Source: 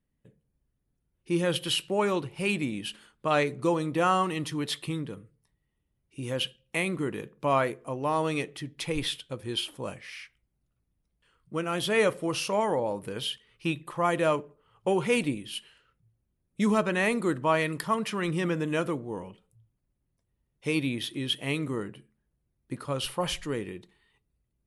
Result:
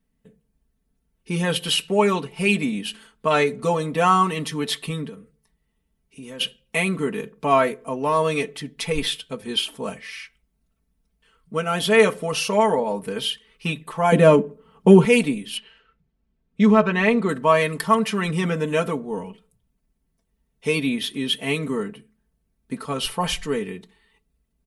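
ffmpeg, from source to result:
-filter_complex "[0:a]asplit=3[a][b][c];[a]afade=t=out:st=5.08:d=0.02[d];[b]acompressor=threshold=-47dB:ratio=2:attack=3.2:release=140:knee=1:detection=peak,afade=t=in:st=5.08:d=0.02,afade=t=out:st=6.39:d=0.02[e];[c]afade=t=in:st=6.39:d=0.02[f];[d][e][f]amix=inputs=3:normalize=0,asettb=1/sr,asplit=3[g][h][i];[g]atrim=end=14.124[j];[h]atrim=start=14.12:end=15.05,asetpts=PTS-STARTPTS,afade=t=in:d=0.004:c=qsin,afade=t=out:st=0.926:d=0.004:c=qsin,equalizer=f=220:t=o:w=2:g=14[k];[i]atrim=start=15.046[l];[j][k]acrossfade=d=0.004:c1=hsin:c2=qsin[m];[m][l]acrossfade=d=0.004:c1=qsin:c2=hsin,asettb=1/sr,asplit=3[n][o][p];[n]atrim=end=15.574[q];[o]atrim=start=15.57:end=17.29,asetpts=PTS-STARTPTS,afade=t=in:d=0.004:c=qsin,afade=t=out:st=1.716:d=0.004:c=qsin,lowpass=3.8k[r];[p]atrim=start=17.286[s];[q][r]acrossfade=d=0.004:c1=hsin:c2=qsin[t];[t][s]acrossfade=d=0.004:c1=qsin:c2=hsin,aecho=1:1:4.5:0.92,volume=4dB"

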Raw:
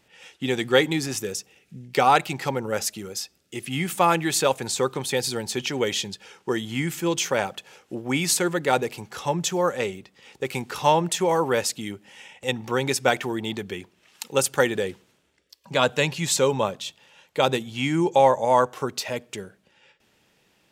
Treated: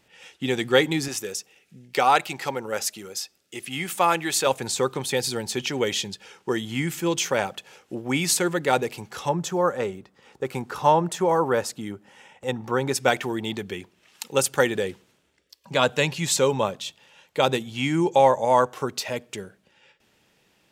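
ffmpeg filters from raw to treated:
-filter_complex "[0:a]asettb=1/sr,asplit=3[a][b][c];[a]atrim=end=1.084[d];[b]atrim=start=1.08:end=4.47,asetpts=PTS-STARTPTS,afade=t=in:d=0.004:c=qsin,afade=t=out:st=3.386:d=0.004:c=qsin,lowshelf=f=240:g=-11[e];[c]atrim=start=4.466[f];[d][e]acrossfade=d=0.004:c1=hsin:c2=qsin[g];[g][f]acrossfade=d=0.004:c1=qsin:c2=hsin,asettb=1/sr,asplit=3[h][i][j];[h]atrim=end=9.294[k];[i]atrim=start=9.29:end=12.95,asetpts=PTS-STARTPTS,afade=t=in:d=0.004:c=qsin,afade=t=out:st=3.656:d=0.004:c=qsin,highshelf=f=1.8k:t=q:w=1.5:g=-6[l];[j]atrim=start=12.946[m];[k][l]acrossfade=d=0.004:c1=hsin:c2=qsin[n];[n][m]acrossfade=d=0.004:c1=qsin:c2=hsin"

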